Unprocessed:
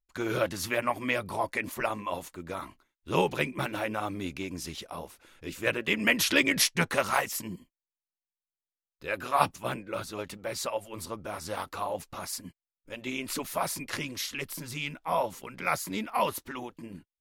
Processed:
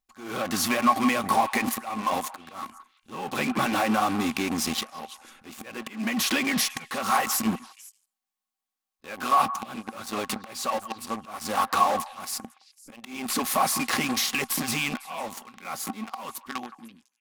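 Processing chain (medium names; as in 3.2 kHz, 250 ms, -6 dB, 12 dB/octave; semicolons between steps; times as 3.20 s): fade out at the end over 1.84 s; in parallel at -10 dB: fuzz box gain 43 dB, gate -40 dBFS; on the sum: compression 8:1, threshold -30 dBFS, peak gain reduction 15.5 dB; slow attack 384 ms; bass shelf 310 Hz -10.5 dB; small resonant body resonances 230/780/1100 Hz, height 15 dB, ringing for 75 ms; on a send: repeats whose band climbs or falls 167 ms, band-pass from 1.2 kHz, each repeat 1.4 oct, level -12 dB; on the sum: trim +6.5 dB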